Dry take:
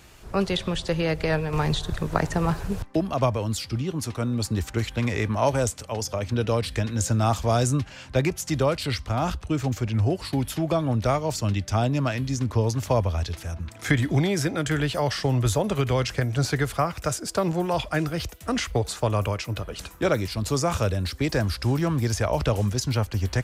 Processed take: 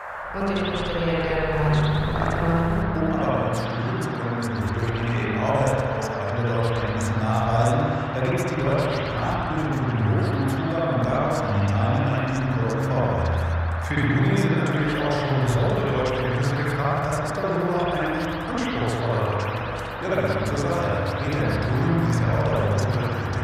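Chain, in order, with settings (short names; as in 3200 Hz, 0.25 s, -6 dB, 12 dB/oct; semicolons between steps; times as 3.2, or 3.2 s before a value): spring tank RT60 2.2 s, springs 60 ms, chirp 75 ms, DRR -9 dB; band noise 540–1700 Hz -26 dBFS; gain -8 dB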